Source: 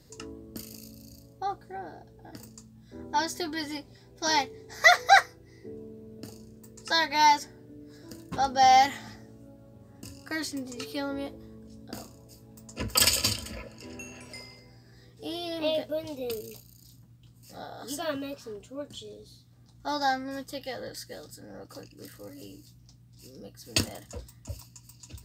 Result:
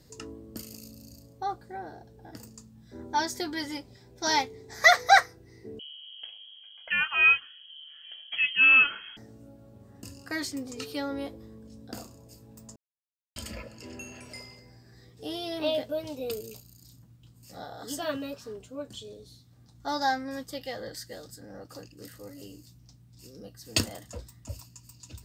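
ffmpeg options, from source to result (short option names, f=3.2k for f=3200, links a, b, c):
-filter_complex "[0:a]asettb=1/sr,asplit=3[a][b][c];[a]atrim=end=5.794[d];[b]atrim=start=5.79:end=9.17,asetpts=PTS-STARTPTS,afade=t=in:d=0.004:c=qsin,afade=t=out:st=3.376:d=0.004:c=qsin,lowpass=f=2.9k:t=q:w=0.5098,lowpass=f=2.9k:t=q:w=0.6013,lowpass=f=2.9k:t=q:w=0.9,lowpass=f=2.9k:t=q:w=2.563,afreqshift=-3400[e];[c]atrim=start=9.166[f];[d][e]acrossfade=d=0.004:c1=hsin:c2=qsin[g];[g][f]acrossfade=d=0.004:c1=qsin:c2=hsin,asplit=3[h][i][j];[h]atrim=end=12.76,asetpts=PTS-STARTPTS,afade=t=out:st=12.756:d=0.004:c=hsin[k];[i]atrim=start=12.76:end=13.36,asetpts=PTS-STARTPTS,volume=0[l];[j]atrim=start=13.36,asetpts=PTS-STARTPTS,afade=t=in:d=0.004:c=hsin[m];[k][l][m]concat=n=3:v=0:a=1"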